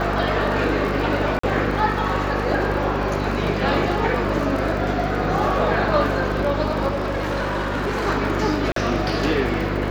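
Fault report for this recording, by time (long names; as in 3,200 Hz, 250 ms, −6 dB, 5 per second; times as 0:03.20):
surface crackle 43 per second −28 dBFS
mains hum 50 Hz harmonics 8 −26 dBFS
0:01.39–0:01.43: drop-out 44 ms
0:06.90–0:08.07: clipping −20 dBFS
0:08.72–0:08.76: drop-out 43 ms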